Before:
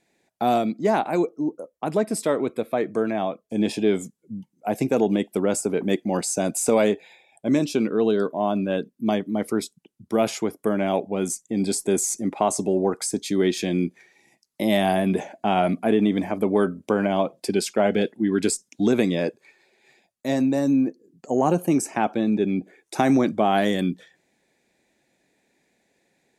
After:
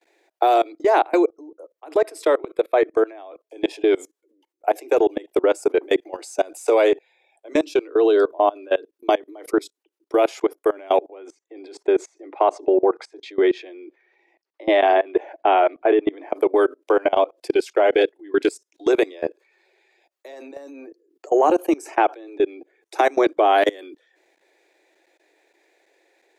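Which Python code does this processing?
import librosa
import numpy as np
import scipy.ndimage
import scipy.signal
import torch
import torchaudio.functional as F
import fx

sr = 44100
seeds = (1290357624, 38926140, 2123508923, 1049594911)

y = fx.lowpass(x, sr, hz=2700.0, slope=12, at=(11.07, 16.3))
y = scipy.signal.sosfilt(scipy.signal.butter(16, 310.0, 'highpass', fs=sr, output='sos'), y)
y = fx.peak_eq(y, sr, hz=9500.0, db=-8.5, octaves=1.6)
y = fx.level_steps(y, sr, step_db=24)
y = y * librosa.db_to_amplitude(9.0)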